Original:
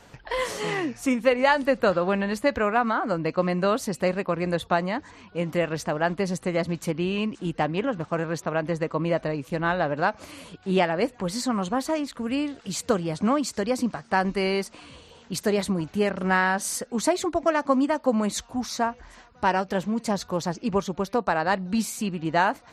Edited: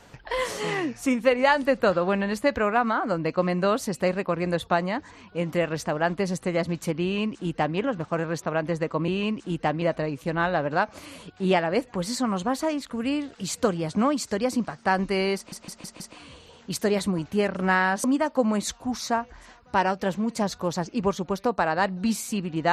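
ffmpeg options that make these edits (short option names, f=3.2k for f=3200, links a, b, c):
-filter_complex "[0:a]asplit=8[a][b][c][d][e][f][g][h];[a]atrim=end=9.082[i];[b]atrim=start=7.028:end=7.772[j];[c]atrim=start=9.078:end=14.782[k];[d]atrim=start=14.618:end=14.782[l];[e]atrim=start=14.618:end=14.782[m];[f]atrim=start=14.618:end=14.782[n];[g]atrim=start=14.618:end=16.662[o];[h]atrim=start=17.728[p];[i][j]acrossfade=d=0.004:c1=hsin:c2=hsin[q];[q][k]acrossfade=d=0.004:c1=hsin:c2=hsin[r];[r][l]acrossfade=d=0.004:c1=hsin:c2=hsin[s];[s][m]acrossfade=d=0.004:c1=hsin:c2=hsin[t];[t][n]acrossfade=d=0.004:c1=hsin:c2=hsin[u];[u][o]acrossfade=d=0.004:c1=hsin:c2=hsin[v];[v][p]acrossfade=d=0.004:c1=hsin:c2=hsin"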